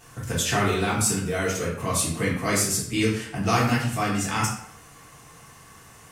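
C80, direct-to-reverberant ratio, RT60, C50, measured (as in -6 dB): 6.5 dB, -6.5 dB, 0.70 s, 4.0 dB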